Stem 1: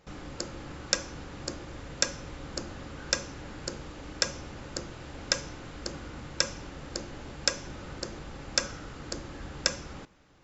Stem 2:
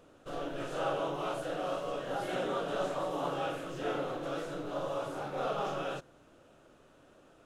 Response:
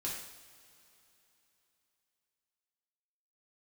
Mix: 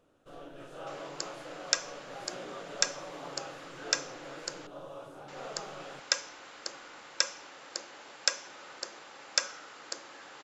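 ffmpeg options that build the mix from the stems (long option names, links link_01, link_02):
-filter_complex "[0:a]highpass=670,adelay=800,volume=-0.5dB,asplit=3[link_01][link_02][link_03];[link_01]atrim=end=4.67,asetpts=PTS-STARTPTS,afade=type=out:start_time=4.666:duration=0.004:curve=hsin[link_04];[link_02]atrim=start=4.67:end=5.28,asetpts=PTS-STARTPTS,volume=0[link_05];[link_03]atrim=start=5.28,asetpts=PTS-STARTPTS,afade=type=in:duration=0.004:curve=hsin[link_06];[link_04][link_05][link_06]concat=n=3:v=0:a=1[link_07];[1:a]volume=-9.5dB[link_08];[link_07][link_08]amix=inputs=2:normalize=0"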